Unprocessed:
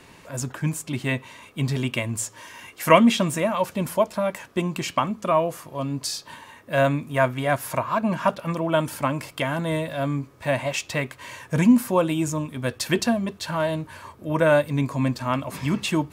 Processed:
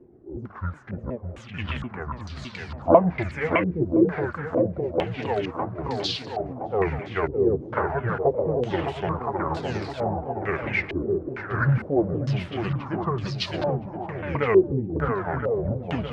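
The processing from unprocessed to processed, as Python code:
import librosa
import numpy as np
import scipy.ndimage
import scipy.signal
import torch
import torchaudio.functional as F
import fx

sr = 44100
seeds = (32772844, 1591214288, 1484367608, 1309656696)

y = fx.pitch_ramps(x, sr, semitones=-12.0, every_ms=368)
y = fx.echo_swing(y, sr, ms=1018, ratio=1.5, feedback_pct=46, wet_db=-5.0)
y = fx.filter_held_lowpass(y, sr, hz=2.2, low_hz=380.0, high_hz=4300.0)
y = y * 10.0 ** (-5.0 / 20.0)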